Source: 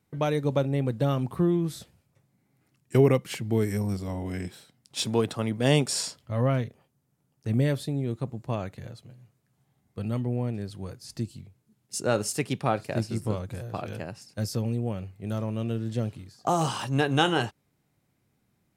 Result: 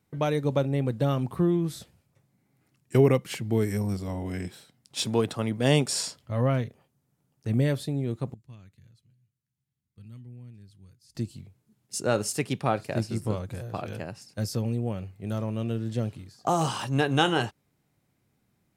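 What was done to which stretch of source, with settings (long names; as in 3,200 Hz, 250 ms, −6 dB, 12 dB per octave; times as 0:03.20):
0:08.34–0:11.15: guitar amp tone stack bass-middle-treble 6-0-2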